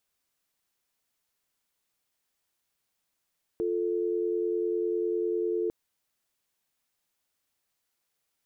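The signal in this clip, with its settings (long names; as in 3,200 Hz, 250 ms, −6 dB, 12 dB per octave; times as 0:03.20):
call progress tone dial tone, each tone −28.5 dBFS 2.10 s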